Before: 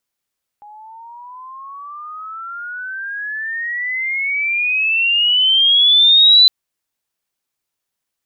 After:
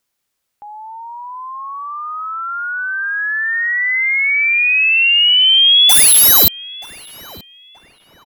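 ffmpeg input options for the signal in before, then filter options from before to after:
-f lavfi -i "aevalsrc='pow(10,(-5+31*(t/5.86-1))/20)*sin(2*PI*824*5.86/(27.5*log(2)/12)*(exp(27.5*log(2)/12*t/5.86)-1))':duration=5.86:sample_rate=44100"
-filter_complex "[0:a]asplit=2[link_01][link_02];[link_02]acompressor=threshold=-21dB:ratio=4,volume=0dB[link_03];[link_01][link_03]amix=inputs=2:normalize=0,aeval=exprs='(mod(1.88*val(0)+1,2)-1)/1.88':channel_layout=same,asplit=2[link_04][link_05];[link_05]adelay=928,lowpass=frequency=1900:poles=1,volume=-15.5dB,asplit=2[link_06][link_07];[link_07]adelay=928,lowpass=frequency=1900:poles=1,volume=0.44,asplit=2[link_08][link_09];[link_09]adelay=928,lowpass=frequency=1900:poles=1,volume=0.44,asplit=2[link_10][link_11];[link_11]adelay=928,lowpass=frequency=1900:poles=1,volume=0.44[link_12];[link_04][link_06][link_08][link_10][link_12]amix=inputs=5:normalize=0"

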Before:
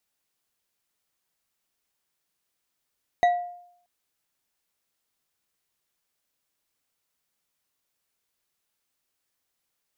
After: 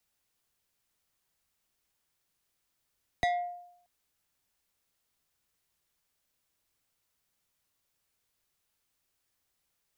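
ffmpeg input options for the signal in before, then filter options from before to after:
-f lavfi -i "aevalsrc='0.2*pow(10,-3*t/0.69)*sin(2*PI*707*t)+0.0631*pow(10,-3*t/0.339)*sin(2*PI*1949.2*t)+0.02*pow(10,-3*t/0.212)*sin(2*PI*3820.6*t)+0.00631*pow(10,-3*t/0.149)*sin(2*PI*6315.6*t)+0.002*pow(10,-3*t/0.113)*sin(2*PI*9431.4*t)':duration=0.63:sample_rate=44100"
-filter_complex "[0:a]acrossover=split=130|400|1700[link_01][link_02][link_03][link_04];[link_01]acontrast=83[link_05];[link_03]asoftclip=type=tanh:threshold=-30.5dB[link_06];[link_05][link_02][link_06][link_04]amix=inputs=4:normalize=0"

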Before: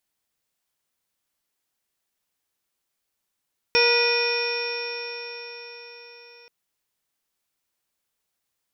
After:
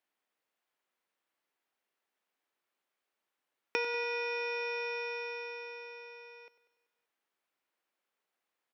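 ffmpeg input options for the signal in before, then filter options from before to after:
-f lavfi -i "aevalsrc='0.1*pow(10,-3*t/4.98)*sin(2*PI*473.8*t)+0.0447*pow(10,-3*t/4.98)*sin(2*PI*952.41*t)+0.0355*pow(10,-3*t/4.98)*sin(2*PI*1440.55*t)+0.0355*pow(10,-3*t/4.98)*sin(2*PI*1942.78*t)+0.112*pow(10,-3*t/4.98)*sin(2*PI*2463.46*t)+0.0126*pow(10,-3*t/4.98)*sin(2*PI*3006.67*t)+0.0282*pow(10,-3*t/4.98)*sin(2*PI*3576.19*t)+0.0126*pow(10,-3*t/4.98)*sin(2*PI*4175.45*t)+0.0178*pow(10,-3*t/4.98)*sin(2*PI*4807.58*t)+0.0944*pow(10,-3*t/4.98)*sin(2*PI*5475.37*t)':duration=2.73:sample_rate=44100"
-filter_complex "[0:a]acrossover=split=240 3000:gain=0.0891 1 0.2[link_01][link_02][link_03];[link_01][link_02][link_03]amix=inputs=3:normalize=0,acompressor=threshold=-31dB:ratio=6,aecho=1:1:96|192|288|384|480|576:0.2|0.118|0.0695|0.041|0.0242|0.0143"

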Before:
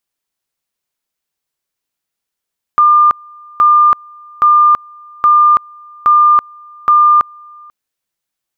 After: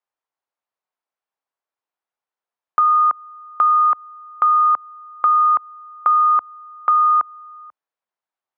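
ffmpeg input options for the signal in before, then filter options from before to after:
-f lavfi -i "aevalsrc='pow(10,(-4.5-29*gte(mod(t,0.82),0.33))/20)*sin(2*PI*1200*t)':duration=4.92:sample_rate=44100"
-af "afreqshift=28,acompressor=threshold=-10dB:ratio=6,bandpass=frequency=870:width_type=q:width=1.3:csg=0"

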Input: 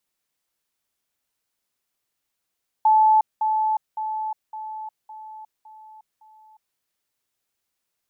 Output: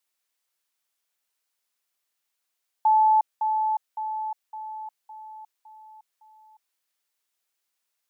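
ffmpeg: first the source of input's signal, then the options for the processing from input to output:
-f lavfi -i "aevalsrc='pow(10,(-12.5-6*floor(t/0.56))/20)*sin(2*PI*868*t)*clip(min(mod(t,0.56),0.36-mod(t,0.56))/0.005,0,1)':duration=3.92:sample_rate=44100"
-af "highpass=frequency=770:poles=1"

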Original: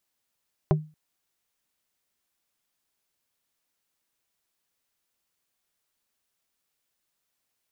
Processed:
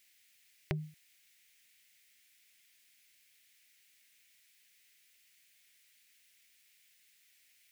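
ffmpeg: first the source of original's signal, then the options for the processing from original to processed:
-f lavfi -i "aevalsrc='0.178*pow(10,-3*t/0.31)*sin(2*PI*154*t)+0.126*pow(10,-3*t/0.103)*sin(2*PI*385*t)+0.0891*pow(10,-3*t/0.059)*sin(2*PI*616*t)+0.0631*pow(10,-3*t/0.045)*sin(2*PI*770*t)+0.0447*pow(10,-3*t/0.033)*sin(2*PI*1001*t)':duration=0.23:sample_rate=44100"
-af "highshelf=frequency=1500:width_type=q:width=3:gain=11.5,acompressor=threshold=-24dB:ratio=6,alimiter=limit=-16dB:level=0:latency=1:release=135"

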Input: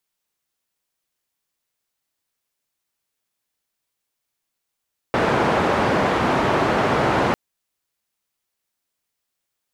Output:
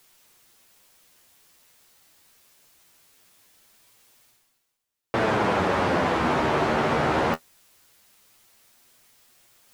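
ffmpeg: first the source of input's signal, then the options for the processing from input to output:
-f lavfi -i "anoisesrc=color=white:duration=2.2:sample_rate=44100:seed=1,highpass=frequency=94,lowpass=frequency=1000,volume=-0.8dB"
-af "areverse,acompressor=mode=upward:threshold=-34dB:ratio=2.5,areverse,flanger=delay=8:depth=5.2:regen=36:speed=0.22:shape=sinusoidal"

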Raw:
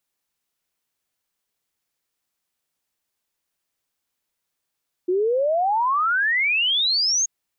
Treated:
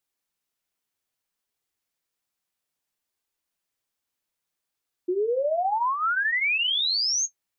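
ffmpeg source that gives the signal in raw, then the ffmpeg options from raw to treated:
-f lavfi -i "aevalsrc='0.133*clip(min(t,2.18-t)/0.01,0,1)*sin(2*PI*350*2.18/log(6700/350)*(exp(log(6700/350)*t/2.18)-1))':duration=2.18:sample_rate=44100"
-af "flanger=delay=2.4:depth=8.1:regen=-50:speed=0.61:shape=sinusoidal"

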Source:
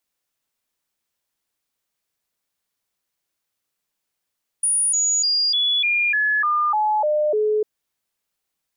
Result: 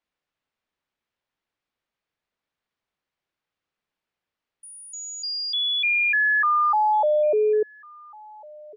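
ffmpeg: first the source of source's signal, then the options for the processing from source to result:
-f lavfi -i "aevalsrc='0.15*clip(min(mod(t,0.3),0.3-mod(t,0.3))/0.005,0,1)*sin(2*PI*9650*pow(2,-floor(t/0.3)/2)*mod(t,0.3))':duration=3:sample_rate=44100"
-filter_complex "[0:a]lowpass=3000,asplit=2[link_01][link_02];[link_02]adelay=1399,volume=-22dB,highshelf=frequency=4000:gain=-31.5[link_03];[link_01][link_03]amix=inputs=2:normalize=0"

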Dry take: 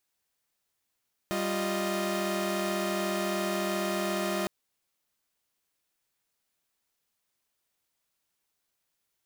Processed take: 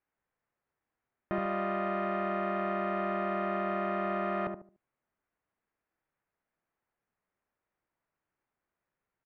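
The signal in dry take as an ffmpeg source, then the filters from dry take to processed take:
-f lavfi -i "aevalsrc='0.0316*((2*mod(196*t,1)-1)+(2*mod(349.23*t,1)-1)+(2*mod(622.25*t,1)-1))':duration=3.16:sample_rate=44100"
-filter_complex "[0:a]lowpass=frequency=2000:width=0.5412,lowpass=frequency=2000:width=1.3066,asplit=2[link_01][link_02];[link_02]adelay=73,lowpass=frequency=850:poles=1,volume=-4dB,asplit=2[link_03][link_04];[link_04]adelay=73,lowpass=frequency=850:poles=1,volume=0.31,asplit=2[link_05][link_06];[link_06]adelay=73,lowpass=frequency=850:poles=1,volume=0.31,asplit=2[link_07][link_08];[link_08]adelay=73,lowpass=frequency=850:poles=1,volume=0.31[link_09];[link_01][link_03][link_05][link_07][link_09]amix=inputs=5:normalize=0"

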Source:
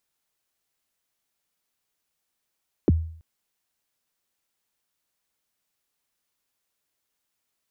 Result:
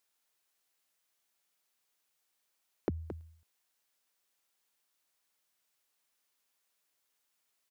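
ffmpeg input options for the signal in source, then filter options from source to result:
-f lavfi -i "aevalsrc='0.251*pow(10,-3*t/0.55)*sin(2*PI*(460*0.027/log(81/460)*(exp(log(81/460)*min(t,0.027)/0.027)-1)+81*max(t-0.027,0)))':duration=0.33:sample_rate=44100"
-filter_complex "[0:a]lowshelf=frequency=260:gain=-11,acompressor=threshold=-31dB:ratio=4,asplit=2[link_01][link_02];[link_02]aecho=0:1:221:0.316[link_03];[link_01][link_03]amix=inputs=2:normalize=0"

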